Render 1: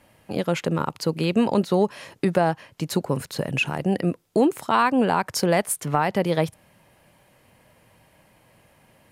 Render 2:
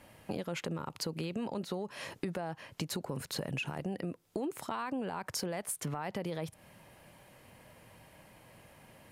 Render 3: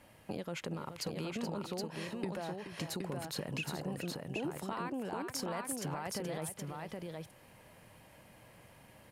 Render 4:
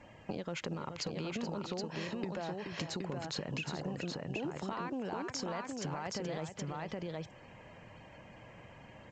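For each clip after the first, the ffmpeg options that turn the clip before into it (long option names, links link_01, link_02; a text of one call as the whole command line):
ffmpeg -i in.wav -af "alimiter=limit=-17.5dB:level=0:latency=1:release=36,acompressor=threshold=-34dB:ratio=6" out.wav
ffmpeg -i in.wav -af "aecho=1:1:426|770:0.316|0.668,volume=-3dB" out.wav
ffmpeg -i in.wav -af "afftfilt=real='re*gte(hypot(re,im),0.000794)':imag='im*gte(hypot(re,im),0.000794)':win_size=1024:overlap=0.75,acompressor=threshold=-41dB:ratio=3,volume=5dB" -ar 16000 -c:a pcm_alaw out.wav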